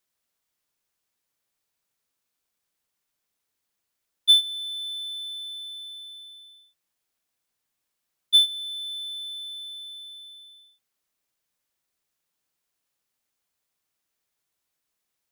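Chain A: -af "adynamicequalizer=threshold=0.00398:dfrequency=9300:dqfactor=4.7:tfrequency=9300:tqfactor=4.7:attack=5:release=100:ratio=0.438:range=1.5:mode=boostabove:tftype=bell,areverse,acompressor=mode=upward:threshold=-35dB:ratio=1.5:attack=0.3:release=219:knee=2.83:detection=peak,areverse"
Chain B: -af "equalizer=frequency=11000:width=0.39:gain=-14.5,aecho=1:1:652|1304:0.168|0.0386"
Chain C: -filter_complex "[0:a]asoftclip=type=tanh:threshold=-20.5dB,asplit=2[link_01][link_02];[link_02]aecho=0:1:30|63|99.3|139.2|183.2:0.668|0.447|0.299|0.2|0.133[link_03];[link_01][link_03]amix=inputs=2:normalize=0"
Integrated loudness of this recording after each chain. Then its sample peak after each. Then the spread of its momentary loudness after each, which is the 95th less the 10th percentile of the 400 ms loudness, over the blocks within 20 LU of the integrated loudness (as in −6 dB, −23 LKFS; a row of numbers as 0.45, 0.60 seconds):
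−24.5, −29.0, −28.5 LKFS; −7.0, −14.0, −17.5 dBFS; 22, 22, 18 LU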